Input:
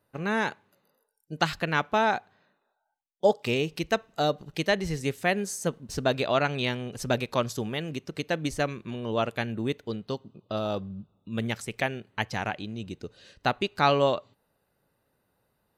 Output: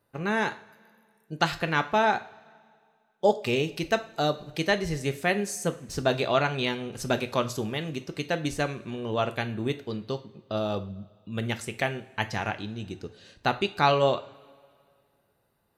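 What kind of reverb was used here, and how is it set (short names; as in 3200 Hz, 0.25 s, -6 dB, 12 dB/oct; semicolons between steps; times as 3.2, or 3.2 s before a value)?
two-slope reverb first 0.37 s, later 2.1 s, from -20 dB, DRR 8 dB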